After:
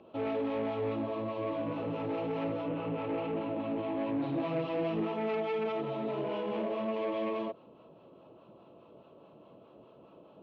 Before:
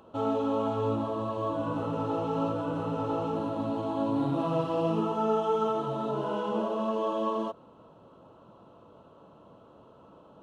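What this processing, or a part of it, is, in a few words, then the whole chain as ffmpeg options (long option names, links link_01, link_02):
guitar amplifier with harmonic tremolo: -filter_complex "[0:a]asettb=1/sr,asplit=3[link_01][link_02][link_03];[link_01]atrim=end=2.684[link_04];[link_02]atrim=start=2.68:end=4.22,asetpts=PTS-STARTPTS,afade=type=in:duration=0.004:curve=qsin,afade=type=out:start_time=1.536:duration=0.004:curve=qsin,highshelf=frequency=3900:width_type=q:width=1.5:gain=-11.5[link_05];[link_03]atrim=start=4.216[link_06];[link_04][link_05]acrossfade=duration=0.004:curve1=hsin:curve2=qsin[link_07];[link_07][link_06]acrossfade=duration=0.004:curve1=qsin:curve2=hsin,acrossover=split=670[link_08][link_09];[link_08]aeval=exprs='val(0)*(1-0.5/2+0.5/2*cos(2*PI*4.8*n/s))':channel_layout=same[link_10];[link_09]aeval=exprs='val(0)*(1-0.5/2-0.5/2*cos(2*PI*4.8*n/s))':channel_layout=same[link_11];[link_10][link_11]amix=inputs=2:normalize=0,asoftclip=type=tanh:threshold=-28.5dB,highpass=78,equalizer=frequency=92:width_type=q:width=4:gain=-6,equalizer=frequency=360:width_type=q:width=4:gain=5,equalizer=frequency=630:width_type=q:width=4:gain=3,equalizer=frequency=940:width_type=q:width=4:gain=-4,equalizer=frequency=1400:width_type=q:width=4:gain=-7,equalizer=frequency=2400:width_type=q:width=4:gain=9,lowpass=frequency=4400:width=0.5412,lowpass=frequency=4400:width=1.3066"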